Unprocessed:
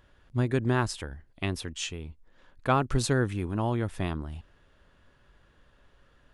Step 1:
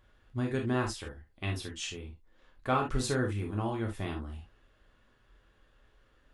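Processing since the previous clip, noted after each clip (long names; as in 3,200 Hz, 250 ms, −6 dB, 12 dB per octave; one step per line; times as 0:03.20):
convolution reverb, pre-delay 3 ms, DRR 0 dB
level −6.5 dB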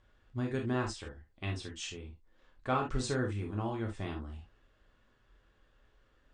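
Chebyshev low-pass filter 8,600 Hz, order 5
level −2.5 dB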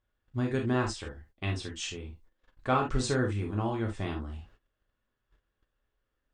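noise gate −60 dBFS, range −18 dB
level +4.5 dB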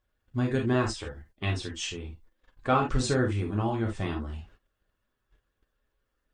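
spectral magnitudes quantised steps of 15 dB
level +3 dB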